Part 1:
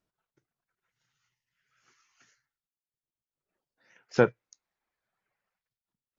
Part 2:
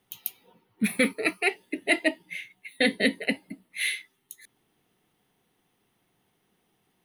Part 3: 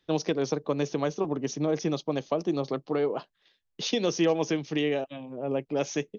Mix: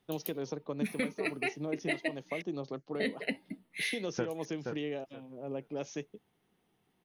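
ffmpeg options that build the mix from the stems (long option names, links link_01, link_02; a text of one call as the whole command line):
ffmpeg -i stem1.wav -i stem2.wav -i stem3.wav -filter_complex "[0:a]volume=-10dB,asplit=2[link_01][link_02];[link_02]volume=-9.5dB[link_03];[1:a]highshelf=frequency=5800:gain=-5.5,volume=-4.5dB,asplit=3[link_04][link_05][link_06];[link_04]atrim=end=2.42,asetpts=PTS-STARTPTS,afade=type=out:start_time=2.416:duration=0.004:curve=hsin[link_07];[link_05]atrim=start=2.42:end=2.95,asetpts=PTS-STARTPTS,volume=0[link_08];[link_06]atrim=start=2.95,asetpts=PTS-STARTPTS,afade=type=in:duration=0.004:curve=hsin[link_09];[link_07][link_08][link_09]concat=n=3:v=0:a=1[link_10];[2:a]volume=-11dB[link_11];[link_03]aecho=0:1:473|946|1419:1|0.19|0.0361[link_12];[link_01][link_10][link_11][link_12]amix=inputs=4:normalize=0,lowshelf=frequency=480:gain=3,acompressor=threshold=-30dB:ratio=4" out.wav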